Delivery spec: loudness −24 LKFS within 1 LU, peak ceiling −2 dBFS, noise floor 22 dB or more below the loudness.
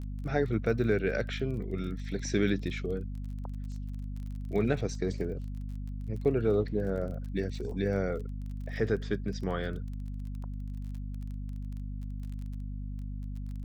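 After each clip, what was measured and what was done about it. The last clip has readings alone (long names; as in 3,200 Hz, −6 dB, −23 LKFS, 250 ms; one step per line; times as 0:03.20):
crackle rate 27 per second; mains hum 50 Hz; hum harmonics up to 250 Hz; level of the hum −34 dBFS; integrated loudness −33.5 LKFS; sample peak −14.5 dBFS; target loudness −24.0 LKFS
→ click removal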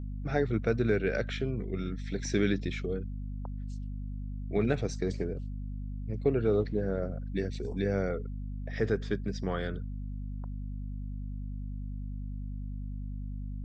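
crackle rate 0 per second; mains hum 50 Hz; hum harmonics up to 250 Hz; level of the hum −34 dBFS
→ hum removal 50 Hz, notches 5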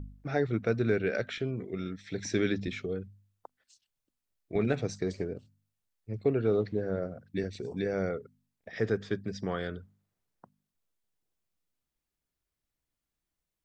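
mains hum none found; integrated loudness −32.5 LKFS; sample peak −14.0 dBFS; target loudness −24.0 LKFS
→ level +8.5 dB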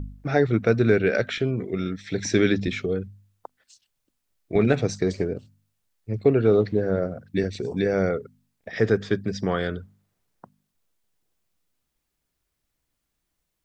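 integrated loudness −24.0 LKFS; sample peak −5.5 dBFS; background noise floor −79 dBFS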